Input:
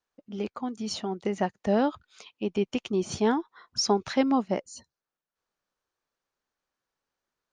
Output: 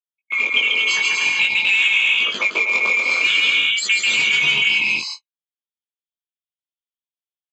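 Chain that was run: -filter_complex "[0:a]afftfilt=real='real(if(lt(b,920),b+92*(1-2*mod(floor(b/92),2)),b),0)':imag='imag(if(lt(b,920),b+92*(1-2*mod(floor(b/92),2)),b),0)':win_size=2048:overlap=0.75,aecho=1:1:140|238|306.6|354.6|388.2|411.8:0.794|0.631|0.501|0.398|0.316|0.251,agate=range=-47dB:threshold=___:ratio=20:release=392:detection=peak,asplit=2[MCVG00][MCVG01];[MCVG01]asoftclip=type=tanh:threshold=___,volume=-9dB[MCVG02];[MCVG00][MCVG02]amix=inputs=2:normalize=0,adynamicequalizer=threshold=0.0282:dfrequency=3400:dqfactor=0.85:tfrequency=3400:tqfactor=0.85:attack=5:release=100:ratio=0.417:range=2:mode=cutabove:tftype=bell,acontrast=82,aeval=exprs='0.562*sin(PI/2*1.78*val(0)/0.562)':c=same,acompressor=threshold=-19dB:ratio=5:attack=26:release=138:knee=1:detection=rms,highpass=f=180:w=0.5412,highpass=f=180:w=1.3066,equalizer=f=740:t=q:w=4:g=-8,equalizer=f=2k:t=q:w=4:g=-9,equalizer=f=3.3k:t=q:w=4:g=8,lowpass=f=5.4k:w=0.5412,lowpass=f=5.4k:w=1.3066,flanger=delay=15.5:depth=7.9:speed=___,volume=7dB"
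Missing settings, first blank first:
-42dB, -23dB, 0.51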